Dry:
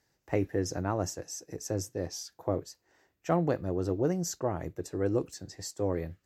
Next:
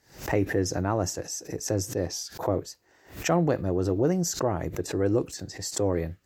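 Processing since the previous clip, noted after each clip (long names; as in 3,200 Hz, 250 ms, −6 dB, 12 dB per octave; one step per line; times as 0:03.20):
in parallel at −0.5 dB: brickwall limiter −22 dBFS, peak gain reduction 9 dB
on the sum: background raised ahead of every attack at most 140 dB per second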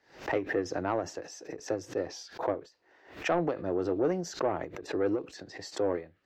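three-way crossover with the lows and the highs turned down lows −14 dB, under 260 Hz, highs −24 dB, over 4,300 Hz
soft clipping −18 dBFS, distortion −18 dB
every ending faded ahead of time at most 190 dB per second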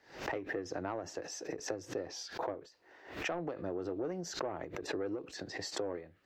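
downward compressor 6 to 1, threshold −38 dBFS, peak gain reduction 14 dB
level +3 dB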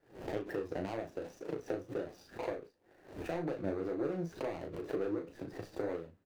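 running median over 41 samples
flanger 2 Hz, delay 5.4 ms, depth 7.2 ms, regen +51%
double-tracking delay 36 ms −6 dB
level +5.5 dB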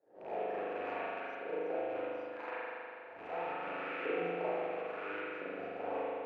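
loose part that buzzes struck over −46 dBFS, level −32 dBFS
auto-filter band-pass saw up 0.74 Hz 570–1,800 Hz
spring reverb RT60 2.7 s, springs 40 ms, chirp 40 ms, DRR −9 dB
level +1 dB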